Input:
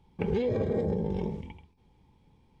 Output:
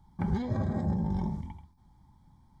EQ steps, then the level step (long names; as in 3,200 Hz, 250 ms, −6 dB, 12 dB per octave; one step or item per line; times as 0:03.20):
phaser with its sweep stopped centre 1,100 Hz, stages 4
+4.0 dB